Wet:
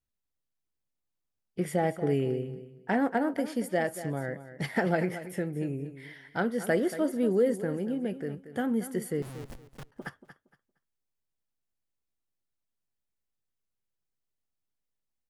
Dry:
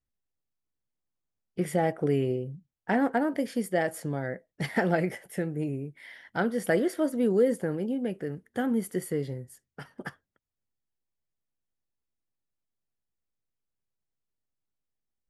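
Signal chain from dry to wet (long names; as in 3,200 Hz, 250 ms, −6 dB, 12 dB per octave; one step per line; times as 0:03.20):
0:09.22–0:09.92: comparator with hysteresis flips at −42.5 dBFS
on a send: repeating echo 232 ms, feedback 22%, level −13 dB
on the sum: level −1.5 dB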